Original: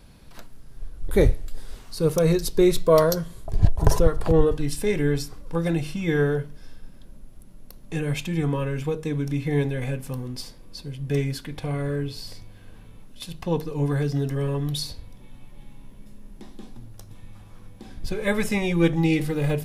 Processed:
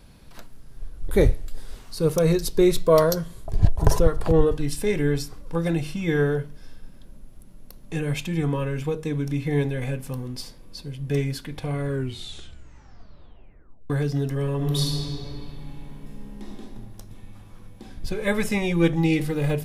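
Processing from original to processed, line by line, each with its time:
11.86 tape stop 2.04 s
14.55–16.48 reverb throw, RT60 2.9 s, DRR -3.5 dB

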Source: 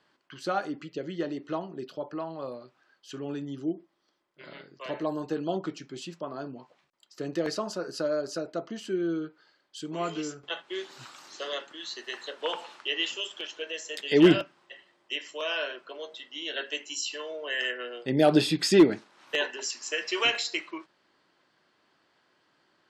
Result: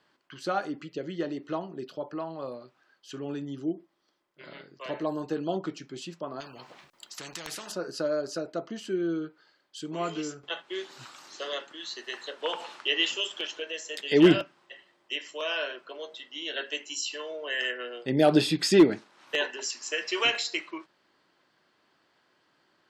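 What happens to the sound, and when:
6.4–7.72 spectral compressor 4:1
12.6–13.6 gain +3.5 dB

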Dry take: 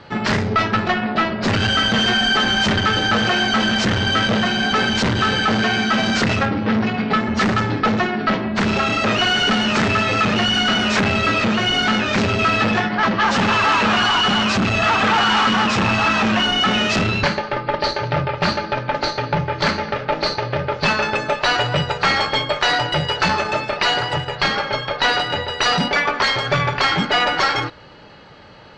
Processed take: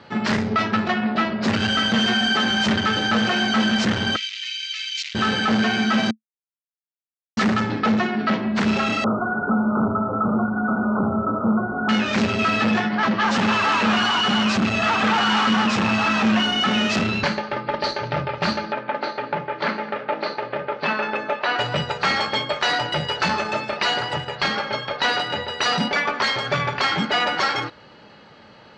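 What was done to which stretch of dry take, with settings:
4.16–5.15 elliptic band-pass 2300–7300 Hz, stop band 60 dB
6.11–7.37 mute
9.04–11.89 brick-wall FIR low-pass 1500 Hz
18.72–21.59 BPF 240–2800 Hz
whole clip: HPF 130 Hz 6 dB/oct; bell 220 Hz +7 dB 0.23 oct; gain -3.5 dB

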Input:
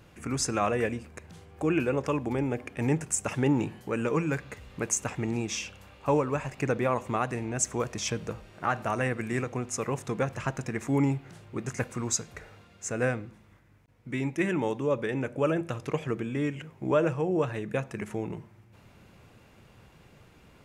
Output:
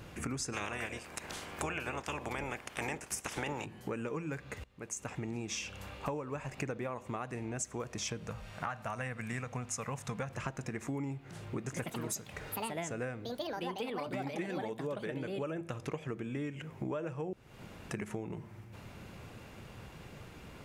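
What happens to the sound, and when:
0.52–3.64 spectral limiter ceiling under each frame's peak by 23 dB
4.64–5.56 fade in quadratic, from -23 dB
8.27–10.3 bell 350 Hz -14.5 dB 0.69 oct
11.61–16.56 echoes that change speed 0.115 s, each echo +5 st, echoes 2
17.33–17.91 room tone
whole clip: compressor 8:1, threshold -41 dBFS; gain +5.5 dB

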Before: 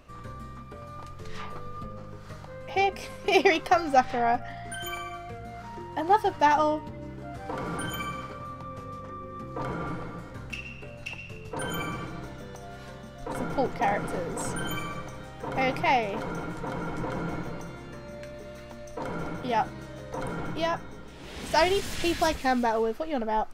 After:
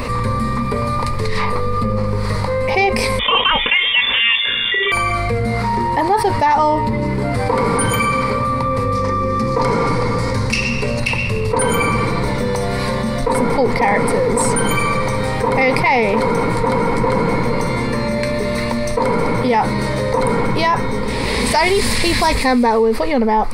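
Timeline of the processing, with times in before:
3.19–4.92 inverted band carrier 3500 Hz
8.95–11 bell 5800 Hz +11 dB
whole clip: ripple EQ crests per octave 0.93, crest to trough 11 dB; maximiser +12.5 dB; fast leveller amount 70%; gain -6 dB

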